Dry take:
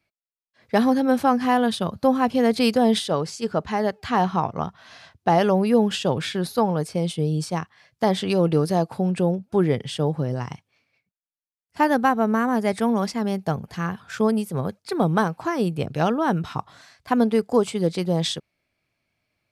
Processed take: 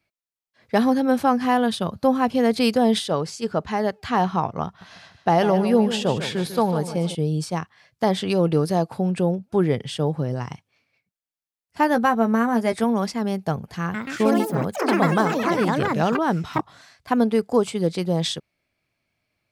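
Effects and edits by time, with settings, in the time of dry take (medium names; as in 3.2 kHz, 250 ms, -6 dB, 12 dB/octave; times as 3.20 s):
4.66–7.15 s: feedback delay 149 ms, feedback 42%, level -11 dB
11.93–12.84 s: doubling 13 ms -8 dB
13.81–17.17 s: ever faster or slower copies 130 ms, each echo +4 st, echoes 3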